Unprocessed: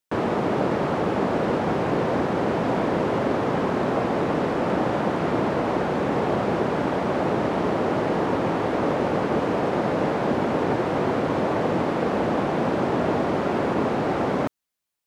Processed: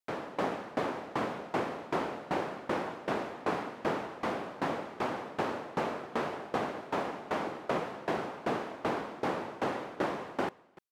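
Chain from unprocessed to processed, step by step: wide varispeed 1.38×; echo 0.298 s -20 dB; dB-ramp tremolo decaying 2.6 Hz, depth 21 dB; gain -5 dB

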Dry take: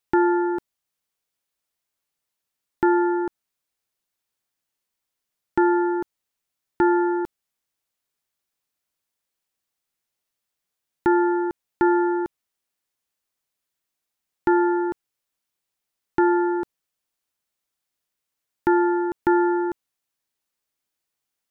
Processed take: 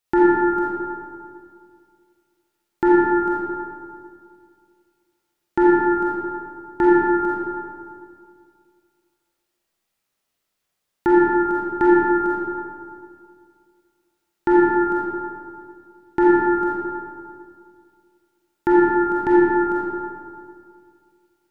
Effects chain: digital reverb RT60 2.2 s, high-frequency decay 0.5×, pre-delay 5 ms, DRR -7 dB

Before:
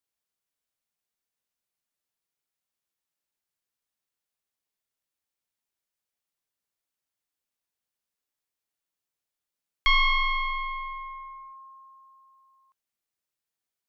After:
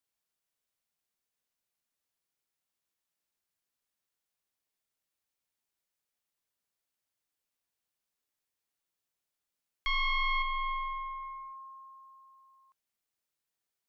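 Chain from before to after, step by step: 10.42–11.23 fixed phaser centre 1700 Hz, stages 6; limiter -26 dBFS, peak gain reduction 11 dB

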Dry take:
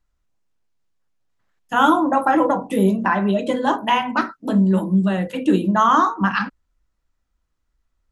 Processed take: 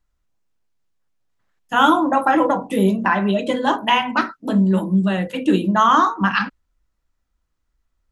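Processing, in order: dynamic EQ 3000 Hz, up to +5 dB, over -36 dBFS, Q 0.85

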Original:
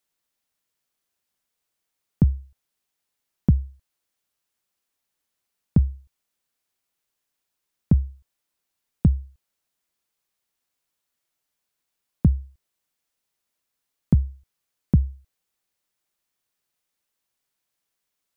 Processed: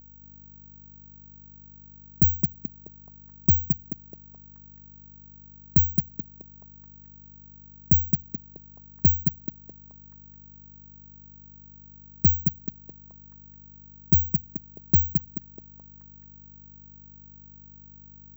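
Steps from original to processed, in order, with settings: median filter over 41 samples; hum 50 Hz, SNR 19 dB; delay with a stepping band-pass 0.215 s, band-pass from 190 Hz, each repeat 0.7 oct, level -2 dB; careless resampling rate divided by 2×, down filtered, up zero stuff; gain -5 dB

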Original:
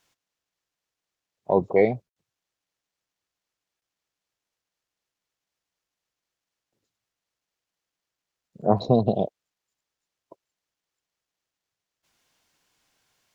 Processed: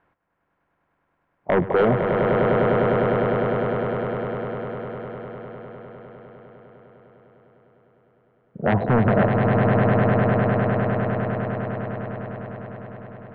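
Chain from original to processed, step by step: limiter -13 dBFS, peak gain reduction 8 dB; LPF 1700 Hz 24 dB/oct; sine folder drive 6 dB, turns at -13 dBFS; swelling echo 0.101 s, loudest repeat 8, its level -6 dB

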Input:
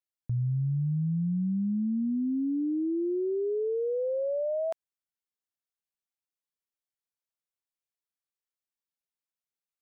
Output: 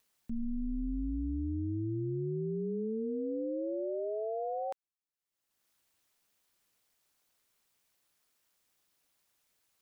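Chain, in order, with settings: upward compressor, threshold -51 dBFS; ring modulator 110 Hz; gain -3 dB

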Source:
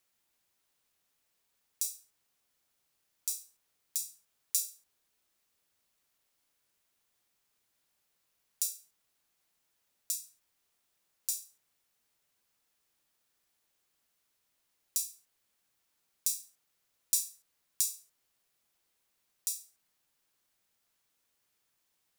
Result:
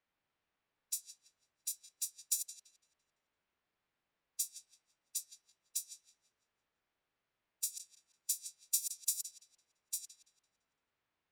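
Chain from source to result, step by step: regenerating reverse delay 0.166 s, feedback 65%, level -8.5 dB; low-pass opened by the level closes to 2400 Hz, open at -31.5 dBFS; time stretch by phase-locked vocoder 0.51×

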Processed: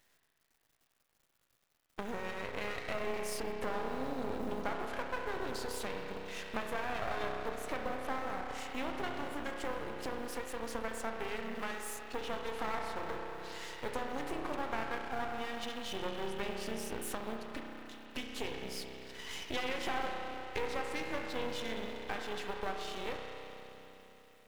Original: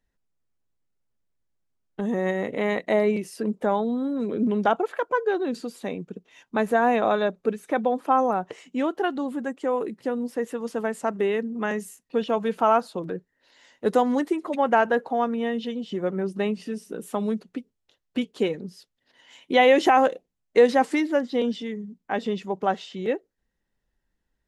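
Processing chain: G.711 law mismatch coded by mu; HPF 930 Hz 6 dB/oct; compressor 4:1, threshold -42 dBFS, peak gain reduction 21 dB; spring tank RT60 3.7 s, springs 31 ms, chirp 80 ms, DRR -0.5 dB; half-wave rectifier; gain +6 dB

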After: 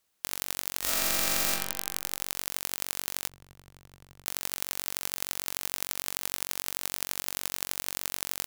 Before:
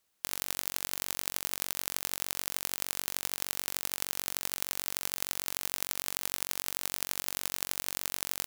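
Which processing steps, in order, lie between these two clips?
0.8–1.51 reverb throw, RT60 0.95 s, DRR -9 dB; 3.29–4.26 EQ curve 130 Hz 0 dB, 210 Hz -11 dB, 13000 Hz -30 dB; gain +1 dB

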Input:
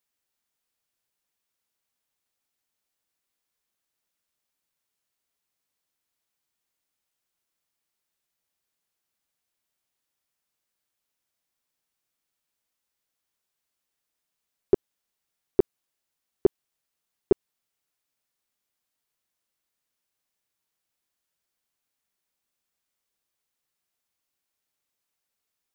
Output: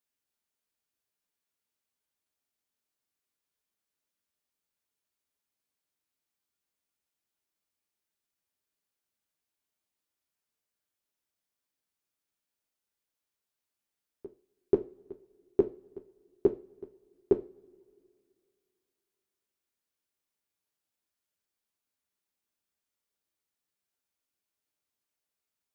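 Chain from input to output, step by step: bell 310 Hz +4.5 dB 0.99 oct; reverse echo 0.485 s -21 dB; two-slope reverb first 0.3 s, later 2.5 s, from -28 dB, DRR 5 dB; gain -7 dB

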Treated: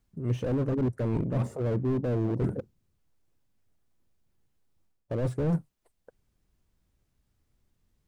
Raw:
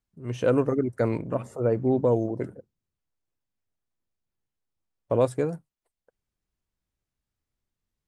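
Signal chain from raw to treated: low shelf 490 Hz +7 dB; reverse; compressor 8:1, threshold -29 dBFS, peak gain reduction 16 dB; reverse; slew limiter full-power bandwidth 8.1 Hz; gain +7 dB

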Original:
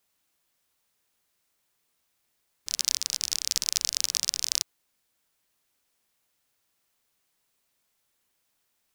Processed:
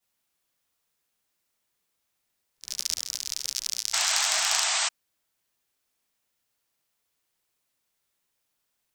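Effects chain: short-time reversal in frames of 0.14 s; painted sound noise, 3.93–4.89, 620–8500 Hz -26 dBFS

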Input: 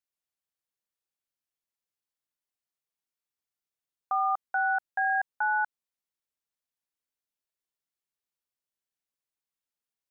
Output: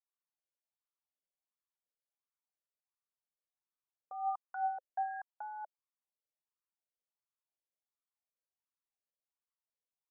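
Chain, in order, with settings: treble ducked by the level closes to 970 Hz, closed at -26.5 dBFS; limiter -25.5 dBFS, peak gain reduction 5.5 dB; wah 1.4 Hz 520–1200 Hz, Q 4.9; gain +1.5 dB

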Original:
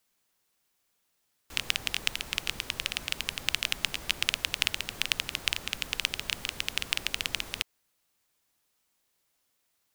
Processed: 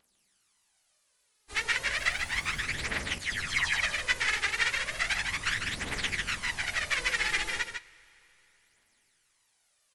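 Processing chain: inharmonic rescaling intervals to 85%; 6.97–7.54 comb 5.9 ms, depth 82%; phaser 0.34 Hz, delay 2.5 ms, feedback 65%; 1.97–2.59 added noise pink -58 dBFS; 3.18–3.81 dispersion lows, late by 0.13 s, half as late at 2600 Hz; vibrato 5.1 Hz 53 cents; on a send: echo 0.15 s -6.5 dB; on the sum: two-slope reverb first 0.25 s, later 3.6 s, from -18 dB, DRR 15 dB; gain +1.5 dB

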